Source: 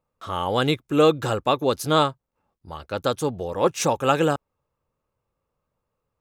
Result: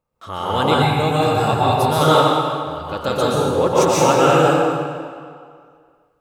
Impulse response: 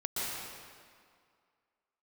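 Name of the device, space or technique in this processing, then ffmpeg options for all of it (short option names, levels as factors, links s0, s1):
stairwell: -filter_complex "[1:a]atrim=start_sample=2205[s0];[0:a][s0]afir=irnorm=-1:irlink=0,asettb=1/sr,asplit=3[s1][s2][s3];[s1]atrim=end=0.824[s4];[s2]atrim=start=0.82:end=2.01,asetpts=PTS-STARTPTS,afade=t=in:d=0.004:c=qsin,afade=t=out:st=1.186:d=0.004:c=qsin,equalizer=f=100:t=o:w=0.33:g=10,equalizer=f=315:t=o:w=0.33:g=-10,equalizer=f=500:t=o:w=0.33:g=-11,equalizer=f=800:t=o:w=0.33:g=6,equalizer=f=1250:t=o:w=0.33:g=-8,equalizer=f=3150:t=o:w=0.33:g=-8,equalizer=f=6300:t=o:w=0.33:g=-7[s5];[s3]atrim=start=2.006[s6];[s4][s5]acrossfade=d=0.004:c1=hsin:c2=qsin[s7];[s7][s6]acrossfade=d=0.004:c1=qsin:c2=hsin,volume=1.26"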